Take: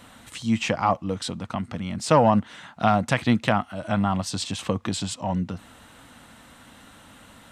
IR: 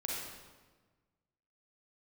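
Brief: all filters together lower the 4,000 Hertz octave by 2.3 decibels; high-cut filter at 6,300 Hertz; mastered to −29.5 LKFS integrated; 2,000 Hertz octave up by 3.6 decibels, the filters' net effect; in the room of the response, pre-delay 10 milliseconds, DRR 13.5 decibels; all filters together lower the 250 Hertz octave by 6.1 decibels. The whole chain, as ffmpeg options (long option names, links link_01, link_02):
-filter_complex "[0:a]lowpass=6300,equalizer=frequency=250:width_type=o:gain=-8,equalizer=frequency=2000:width_type=o:gain=6,equalizer=frequency=4000:width_type=o:gain=-4.5,asplit=2[link_01][link_02];[1:a]atrim=start_sample=2205,adelay=10[link_03];[link_02][link_03]afir=irnorm=-1:irlink=0,volume=-16dB[link_04];[link_01][link_04]amix=inputs=2:normalize=0,volume=-4dB"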